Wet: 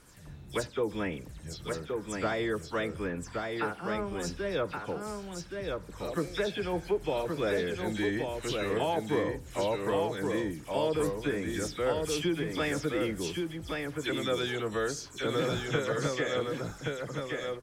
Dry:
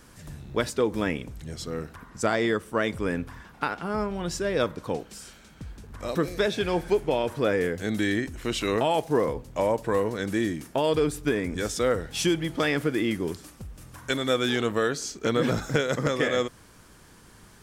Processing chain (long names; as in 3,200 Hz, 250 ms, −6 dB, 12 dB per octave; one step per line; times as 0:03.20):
every frequency bin delayed by itself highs early, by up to 106 ms
single-tap delay 1,123 ms −4 dB
level −6 dB